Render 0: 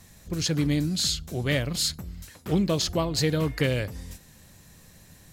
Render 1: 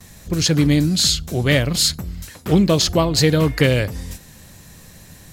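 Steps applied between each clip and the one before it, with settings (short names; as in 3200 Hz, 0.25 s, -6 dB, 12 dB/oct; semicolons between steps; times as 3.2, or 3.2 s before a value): gate with hold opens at -44 dBFS; gain +9 dB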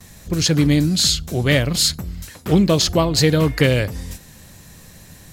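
nothing audible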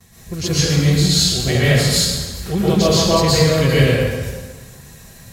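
notch comb 300 Hz; plate-style reverb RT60 1.4 s, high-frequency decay 0.8×, pre-delay 0.105 s, DRR -9 dB; gain -5.5 dB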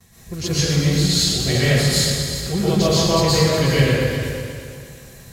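multi-head echo 0.121 s, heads all three, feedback 46%, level -14 dB; warbling echo 88 ms, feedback 63%, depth 166 cents, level -16.5 dB; gain -3 dB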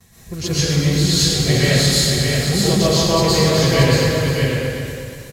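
echo 0.628 s -4 dB; gain +1 dB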